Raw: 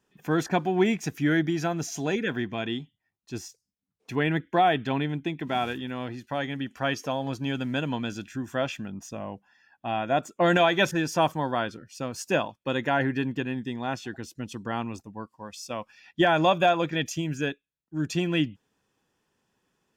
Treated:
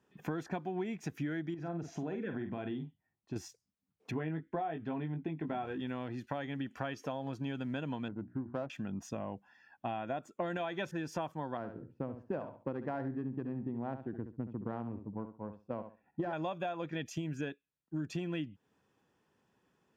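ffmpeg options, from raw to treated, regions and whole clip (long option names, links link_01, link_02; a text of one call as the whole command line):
ffmpeg -i in.wav -filter_complex "[0:a]asettb=1/sr,asplit=3[link_01][link_02][link_03];[link_01]atrim=end=1.544[link_04];[link_02]atrim=start=1.54:end=3.36,asetpts=PTS-STARTPTS,afade=type=in:duration=0.004:curve=qsin,afade=type=out:start_time=1.816:duration=0.004:curve=qsin,lowpass=frequency=1200:poles=1,acompressor=threshold=-34dB:ratio=3:attack=3.2:release=140:knee=1:detection=peak,asplit=2[link_05][link_06];[link_06]adelay=47,volume=-8dB[link_07];[link_05][link_07]amix=inputs=2:normalize=0,atrim=end_sample=80262[link_08];[link_03]atrim=start=3.356[link_09];[link_04][link_08]acrossfade=duration=0.004:curve1=hsin:curve2=qsin[link_10];[link_10][link_09]acrossfade=duration=0.004:curve1=qsin:curve2=hsin,asettb=1/sr,asplit=3[link_11][link_12][link_13];[link_11]atrim=end=4.114[link_14];[link_12]atrim=start=4.11:end=5.8,asetpts=PTS-STARTPTS,afade=type=in:duration=0.004:curve=qsin,afade=type=out:start_time=1.686:duration=0.004:curve=qsin,lowpass=frequency=1300:poles=1,asplit=2[link_15][link_16];[link_16]adelay=19,volume=-5.5dB[link_17];[link_15][link_17]amix=inputs=2:normalize=0,atrim=end_sample=74529[link_18];[link_13]atrim=start=5.796[link_19];[link_14][link_18]acrossfade=duration=0.004:curve1=hsin:curve2=qsin[link_20];[link_20][link_19]acrossfade=duration=0.004:curve1=qsin:curve2=hsin,asettb=1/sr,asplit=3[link_21][link_22][link_23];[link_21]atrim=end=8.084[link_24];[link_22]atrim=start=8.08:end=8.7,asetpts=PTS-STARTPTS,afade=type=in:duration=0.004:curve=qsin,afade=type=out:start_time=0.616:duration=0.004:curve=qsin,lowpass=frequency=1400:width=0.5412,lowpass=frequency=1400:width=1.3066,bandreject=frequency=60:width_type=h:width=6,bandreject=frequency=120:width_type=h:width=6,bandreject=frequency=180:width_type=h:width=6,bandreject=frequency=240:width_type=h:width=6,bandreject=frequency=300:width_type=h:width=6,bandreject=frequency=360:width_type=h:width=6,adynamicsmooth=sensitivity=3:basefreq=630[link_25];[link_23]atrim=start=8.696[link_26];[link_24][link_25]acrossfade=duration=0.004:curve1=hsin:curve2=qsin[link_27];[link_27][link_26]acrossfade=duration=0.004:curve1=qsin:curve2=hsin,asettb=1/sr,asplit=3[link_28][link_29][link_30];[link_28]atrim=end=11.574[link_31];[link_29]atrim=start=11.57:end=16.33,asetpts=PTS-STARTPTS,afade=type=in:duration=0.004:curve=qsin,afade=type=out:start_time=4.756:duration=0.004:curve=qsin,adynamicsmooth=sensitivity=1:basefreq=780,equalizer=frequency=6000:width_type=o:width=2.8:gain=-14,aecho=1:1:68|136|204:0.282|0.0535|0.0102,atrim=end_sample=209916[link_32];[link_30]atrim=start=16.326[link_33];[link_31][link_32]acrossfade=duration=0.004:curve1=hsin:curve2=qsin[link_34];[link_34][link_33]acrossfade=duration=0.004:curve1=qsin:curve2=hsin,highpass=60,highshelf=frequency=3100:gain=-10,acompressor=threshold=-35dB:ratio=10,volume=1dB" out.wav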